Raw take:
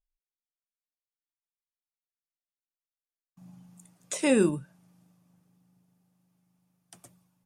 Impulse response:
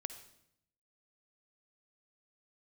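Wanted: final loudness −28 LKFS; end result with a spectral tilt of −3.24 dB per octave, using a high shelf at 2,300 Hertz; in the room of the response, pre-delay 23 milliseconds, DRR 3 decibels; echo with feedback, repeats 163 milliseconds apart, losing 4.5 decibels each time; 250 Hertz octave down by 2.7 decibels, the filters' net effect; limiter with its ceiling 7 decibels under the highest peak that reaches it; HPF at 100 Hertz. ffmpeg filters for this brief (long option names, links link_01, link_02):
-filter_complex "[0:a]highpass=100,equalizer=frequency=250:width_type=o:gain=-3.5,highshelf=frequency=2300:gain=7,alimiter=limit=-18dB:level=0:latency=1,aecho=1:1:163|326|489|652|815|978|1141|1304|1467:0.596|0.357|0.214|0.129|0.0772|0.0463|0.0278|0.0167|0.01,asplit=2[link_01][link_02];[1:a]atrim=start_sample=2205,adelay=23[link_03];[link_02][link_03]afir=irnorm=-1:irlink=0,volume=-1dB[link_04];[link_01][link_04]amix=inputs=2:normalize=0"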